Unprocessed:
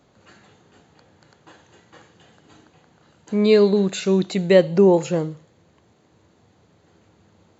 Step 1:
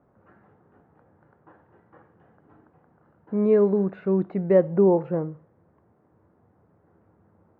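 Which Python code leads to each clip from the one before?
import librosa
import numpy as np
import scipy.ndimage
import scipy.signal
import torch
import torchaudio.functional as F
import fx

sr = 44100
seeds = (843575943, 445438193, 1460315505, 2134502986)

y = scipy.signal.sosfilt(scipy.signal.butter(4, 1500.0, 'lowpass', fs=sr, output='sos'), x)
y = y * librosa.db_to_amplitude(-4.0)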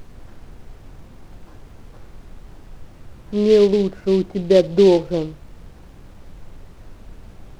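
y = fx.dynamic_eq(x, sr, hz=350.0, q=1.0, threshold_db=-32.0, ratio=4.0, max_db=7)
y = fx.dmg_noise_colour(y, sr, seeds[0], colour='brown', level_db=-38.0)
y = fx.noise_mod_delay(y, sr, seeds[1], noise_hz=3200.0, depth_ms=0.031)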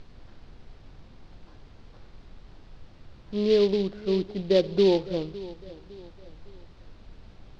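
y = fx.lowpass_res(x, sr, hz=4400.0, q=2.0)
y = fx.echo_feedback(y, sr, ms=558, feedback_pct=41, wet_db=-18)
y = y * librosa.db_to_amplitude(-8.0)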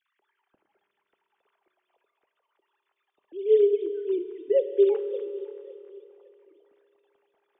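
y = fx.sine_speech(x, sr)
y = fx.air_absorb(y, sr, metres=81.0)
y = fx.rev_fdn(y, sr, rt60_s=3.3, lf_ratio=1.0, hf_ratio=0.95, size_ms=15.0, drr_db=9.0)
y = y * librosa.db_to_amplitude(-1.5)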